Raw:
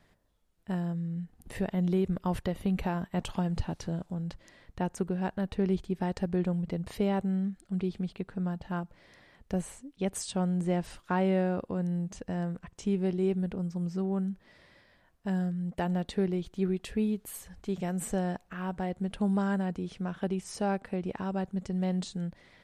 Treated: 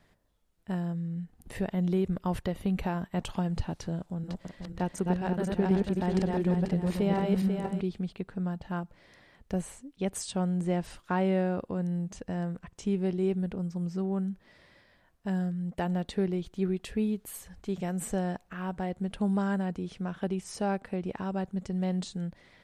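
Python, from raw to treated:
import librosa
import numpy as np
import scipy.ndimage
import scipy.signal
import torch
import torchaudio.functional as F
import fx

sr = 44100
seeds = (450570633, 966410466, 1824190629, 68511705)

y = fx.reverse_delay_fb(x, sr, ms=245, feedback_pct=53, wet_db=-1.0, at=(3.99, 7.81))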